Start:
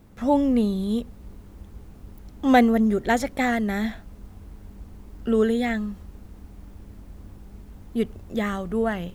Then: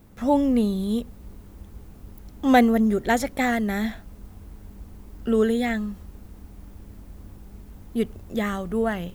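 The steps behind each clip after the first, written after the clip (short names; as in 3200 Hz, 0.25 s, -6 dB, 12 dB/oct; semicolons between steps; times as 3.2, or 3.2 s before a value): high shelf 9700 Hz +7 dB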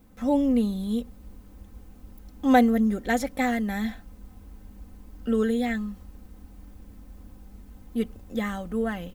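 comb 3.9 ms, depth 56%; gain -5 dB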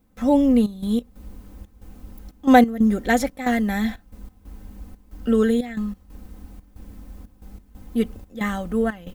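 step gate ".xxx.x.xxx" 91 bpm -12 dB; gain +5.5 dB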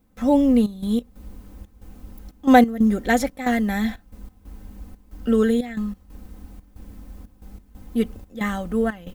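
short-mantissa float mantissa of 6-bit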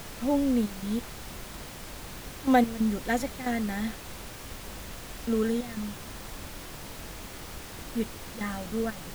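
added noise pink -33 dBFS; gain -8.5 dB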